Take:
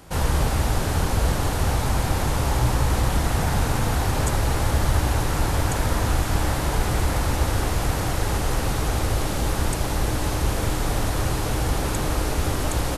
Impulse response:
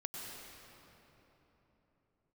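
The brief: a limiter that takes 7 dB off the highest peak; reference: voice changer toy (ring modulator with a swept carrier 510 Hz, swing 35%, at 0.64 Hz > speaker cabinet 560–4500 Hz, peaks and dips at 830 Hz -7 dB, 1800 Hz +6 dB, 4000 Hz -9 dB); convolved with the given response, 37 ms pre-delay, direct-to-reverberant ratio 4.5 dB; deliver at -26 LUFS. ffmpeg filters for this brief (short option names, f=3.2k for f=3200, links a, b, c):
-filter_complex "[0:a]alimiter=limit=-14.5dB:level=0:latency=1,asplit=2[a][b];[1:a]atrim=start_sample=2205,adelay=37[c];[b][c]afir=irnorm=-1:irlink=0,volume=-4.5dB[d];[a][d]amix=inputs=2:normalize=0,aeval=exprs='val(0)*sin(2*PI*510*n/s+510*0.35/0.64*sin(2*PI*0.64*n/s))':c=same,highpass=560,equalizer=f=830:t=q:w=4:g=-7,equalizer=f=1.8k:t=q:w=4:g=6,equalizer=f=4k:t=q:w=4:g=-9,lowpass=f=4.5k:w=0.5412,lowpass=f=4.5k:w=1.3066,volume=3dB"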